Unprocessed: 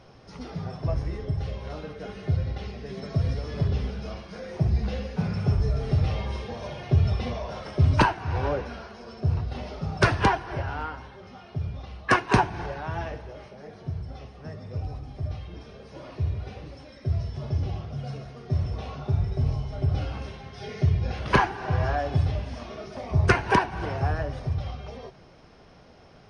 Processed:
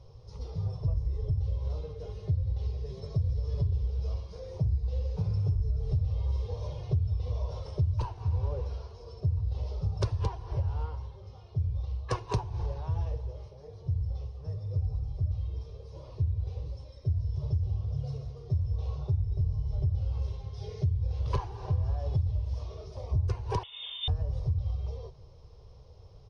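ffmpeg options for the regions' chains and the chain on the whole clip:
-filter_complex "[0:a]asettb=1/sr,asplit=3[a][b][c];[a]atrim=end=23.634[d];[b]atrim=start=23.63:end=24.08,asetpts=PTS-STARTPTS,afade=t=in:d=0.004:c=qsin,afade=t=out:st=0.446:d=0.004:c=qsin,highpass=56,lowpass=f=3.1k:t=q:w=0.5098,lowpass=f=3.1k:t=q:w=0.6013,lowpass=f=3.1k:t=q:w=0.9,lowpass=f=3.1k:t=q:w=2.563,afreqshift=-3700[e];[c]atrim=start=24.076[f];[d][e]acrossfade=d=0.004:c1=hsin:c2=qsin[g];[g][f]acrossfade=d=0.004:c1=qsin:c2=hsin,firequalizer=gain_entry='entry(100,0);entry(220,-29);entry(470,-9);entry(680,-21);entry(1000,-14);entry(1500,-30);entry(3800,-12);entry(5900,-9);entry(12000,-14)':delay=0.05:min_phase=1,acompressor=threshold=-33dB:ratio=6,highshelf=f=5.2k:g=-8,volume=7.5dB"

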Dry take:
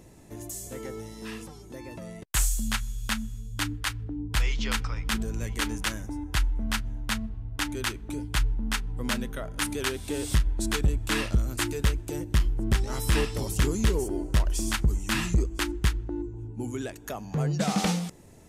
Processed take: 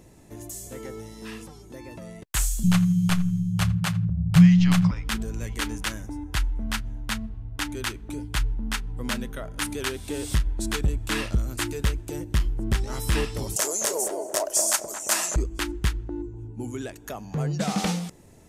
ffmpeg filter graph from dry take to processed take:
-filter_complex "[0:a]asettb=1/sr,asplit=3[a][b][c];[a]atrim=end=2.634[d];[b]atrim=start=2.63:end=4.91,asetpts=PTS-STARTPTS,afade=t=in:d=0.004:c=qsin,afade=t=out:st=2.276:d=0.004:c=qsin,lowshelf=f=260:g=12,afreqshift=-220,asplit=2[e][f];[f]adelay=82,lowpass=f=3.9k:p=1,volume=-19dB,asplit=2[g][h];[h]adelay=82,lowpass=f=3.9k:p=1,volume=0.18[i];[e][g][i]amix=inputs=3:normalize=0,atrim=end_sample=100548[j];[c]atrim=start=4.906[k];[d][j]acrossfade=d=0.004:c1=hsin:c2=qsin[l];[l][k]acrossfade=d=0.004:c1=qsin:c2=hsin,asettb=1/sr,asplit=3[m][n][o];[m]atrim=end=13.564[p];[n]atrim=start=13.56:end=15.36,asetpts=PTS-STARTPTS,afade=t=in:d=0.004:c=qsin,afade=t=out:st=1.796:d=0.004:c=qsin,highpass=f=620:t=q:w=6.7,highshelf=f=4.7k:t=q:w=1.5:g=11,asplit=2[q][r];[r]adelay=223,lowpass=f=910:p=1,volume=-4.5dB,asplit=2[s][t];[t]adelay=223,lowpass=f=910:p=1,volume=0.34,asplit=2[u][v];[v]adelay=223,lowpass=f=910:p=1,volume=0.34,asplit=2[w][x];[x]adelay=223,lowpass=f=910:p=1,volume=0.34[y];[q][s][u][w][y]amix=inputs=5:normalize=0,atrim=end_sample=79380[z];[o]atrim=start=15.356[aa];[p][z]acrossfade=d=0.004:c1=hsin:c2=qsin[ab];[ab][aa]acrossfade=d=0.004:c1=qsin:c2=hsin"

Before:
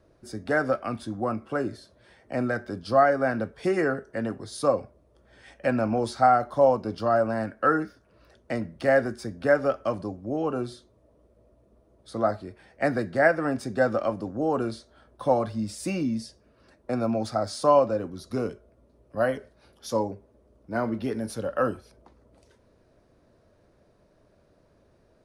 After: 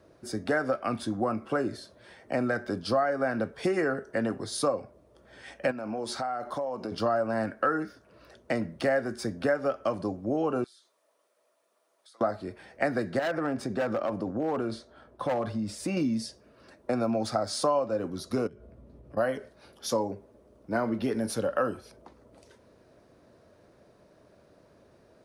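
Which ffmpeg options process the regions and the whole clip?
-filter_complex "[0:a]asettb=1/sr,asplit=3[a][b][c];[a]atrim=end=5.714[d];[b]atrim=start=5.71:end=6.92,asetpts=PTS-STARTPTS,afade=t=in:d=0.004:c=qsin,afade=t=out:st=1.206:d=0.004:c=qsin,equalizer=f=92:w=1.1:g=-7.5,acompressor=threshold=-33dB:ratio=8:attack=3.2:release=140:knee=1:detection=peak[e];[c]atrim=start=6.916[f];[d][e]acrossfade=d=0.004:c1=hsin:c2=qsin[g];[g][f]acrossfade=d=0.004:c1=qsin:c2=hsin,asettb=1/sr,asplit=3[h][i][j];[h]atrim=end=10.644[k];[i]atrim=start=10.64:end=12.21,asetpts=PTS-STARTPTS,afade=t=in:d=0.004:c=qsin,afade=t=out:st=1.566:d=0.004:c=qsin,highpass=1.2k,highshelf=f=5.1k:g=5,acompressor=threshold=-58dB:ratio=12:attack=3.2:release=140:knee=1:detection=peak[l];[j]atrim=start=12.206[m];[k][l]acrossfade=d=0.004:c1=hsin:c2=qsin[n];[n][m]acrossfade=d=0.004:c1=qsin:c2=hsin,asettb=1/sr,asplit=3[o][p][q];[o]atrim=end=13.194[r];[p]atrim=start=13.19:end=15.97,asetpts=PTS-STARTPTS,afade=t=in:d=0.004:c=qsin,afade=t=out:st=2.776:d=0.004:c=qsin,highshelf=f=3.5k:g=-8.5,asoftclip=type=hard:threshold=-19.5dB,acompressor=threshold=-29dB:ratio=4:attack=3.2:release=140:knee=1:detection=peak[s];[q]atrim=start=15.966[t];[r][s]acrossfade=d=0.004:c1=hsin:c2=qsin[u];[u][t]acrossfade=d=0.004:c1=qsin:c2=hsin,asettb=1/sr,asplit=3[v][w][x];[v]atrim=end=18.474[y];[w]atrim=start=18.47:end=19.17,asetpts=PTS-STARTPTS,afade=t=in:d=0.004:c=qsin,afade=t=out:st=0.696:d=0.004:c=qsin,bass=f=250:g=12,treble=f=4k:g=-6,acompressor=threshold=-45dB:ratio=8:attack=3.2:release=140:knee=1:detection=peak,asplit=2[z][aa];[aa]adelay=14,volume=-12.5dB[ab];[z][ab]amix=inputs=2:normalize=0,atrim=end_sample=30870[ac];[x]atrim=start=19.166[ad];[y][ac]acrossfade=d=0.004:c1=hsin:c2=qsin[ae];[ae][ad]acrossfade=d=0.004:c1=qsin:c2=hsin,highpass=f=140:p=1,acompressor=threshold=-29dB:ratio=4,volume=4.5dB"

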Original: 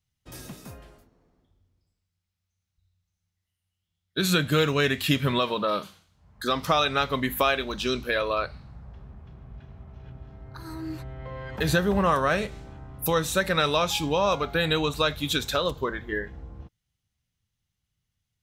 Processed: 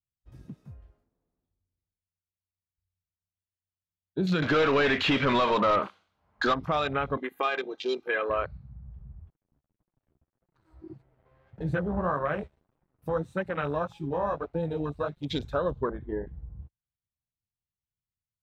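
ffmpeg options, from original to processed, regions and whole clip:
-filter_complex "[0:a]asettb=1/sr,asplit=3[a][b][c];[a]atrim=end=4.424[d];[b]atrim=start=4.42:end=6.54,asetpts=PTS-STARTPTS,afade=t=in:d=0.004:c=qsin,afade=t=out:st=2.116:d=0.004:c=qsin,bandreject=f=1.8k:w=24,asplit=2[e][f];[f]highpass=f=720:p=1,volume=23dB,asoftclip=type=tanh:threshold=-9dB[g];[e][g]amix=inputs=2:normalize=0,lowpass=f=4.1k:p=1,volume=-6dB,equalizer=f=150:t=o:w=0.32:g=-8[h];[c]atrim=start=6.536[i];[d][h]acrossfade=d=0.004:c1=hsin:c2=qsin[j];[j][i]acrossfade=d=0.004:c1=qsin:c2=hsin,asettb=1/sr,asplit=3[k][l][m];[k]atrim=end=7.174[n];[l]atrim=start=7.17:end=8.3,asetpts=PTS-STARTPTS,afade=t=in:d=0.004:c=qsin,afade=t=out:st=1.126:d=0.004:c=qsin,highpass=270,lowshelf=f=390:g=-7,aecho=1:1:2.5:0.83,atrim=end_sample=49833[o];[m]atrim=start=8.296[p];[n][o]acrossfade=d=0.004:c1=hsin:c2=qsin[q];[q][p]acrossfade=d=0.004:c1=qsin:c2=hsin,asettb=1/sr,asplit=3[r][s][t];[r]atrim=end=9.304[u];[s]atrim=start=9.3:end=15.3,asetpts=PTS-STARTPTS,afade=t=in:d=0.004:c=qsin,afade=t=out:st=5.996:d=0.004:c=qsin,equalizer=f=8.4k:w=7.6:g=9,aeval=exprs='sgn(val(0))*max(abs(val(0))-0.0106,0)':c=same,flanger=delay=5.5:depth=8.6:regen=19:speed=1.7:shape=sinusoidal[v];[t]atrim=start=15.296[w];[u][v]acrossfade=d=0.004:c1=hsin:c2=qsin[x];[x][w]acrossfade=d=0.004:c1=qsin:c2=hsin,afwtdn=0.0355,lowpass=f=1.6k:p=1,alimiter=limit=-17dB:level=0:latency=1:release=69"

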